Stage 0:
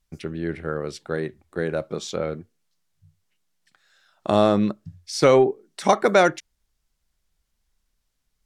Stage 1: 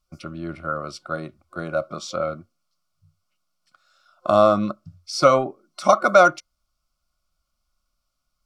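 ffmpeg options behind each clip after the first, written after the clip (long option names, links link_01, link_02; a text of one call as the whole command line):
ffmpeg -i in.wav -af "superequalizer=7b=0.316:8b=2.24:10b=3.55:11b=0.316:14b=1.78,volume=-3dB" out.wav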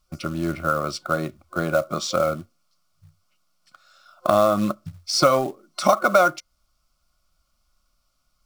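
ffmpeg -i in.wav -af "acompressor=threshold=-24dB:ratio=2.5,acrusher=bits=5:mode=log:mix=0:aa=0.000001,volume=6.5dB" out.wav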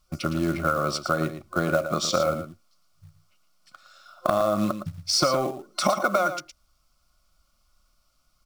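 ffmpeg -i in.wav -af "acompressor=threshold=-21dB:ratio=6,aecho=1:1:113:0.316,volume=2dB" out.wav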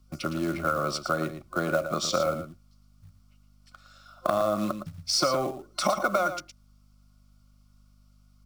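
ffmpeg -i in.wav -filter_complex "[0:a]aeval=exprs='val(0)+0.00178*(sin(2*PI*50*n/s)+sin(2*PI*2*50*n/s)/2+sin(2*PI*3*50*n/s)/3+sin(2*PI*4*50*n/s)/4+sin(2*PI*5*50*n/s)/5)':channel_layout=same,acrossover=split=190[link_01][link_02];[link_01]alimiter=level_in=9dB:limit=-24dB:level=0:latency=1,volume=-9dB[link_03];[link_03][link_02]amix=inputs=2:normalize=0,volume=-2.5dB" out.wav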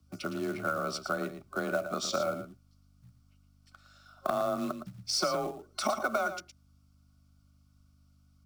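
ffmpeg -i in.wav -af "afreqshift=26,volume=-5dB" out.wav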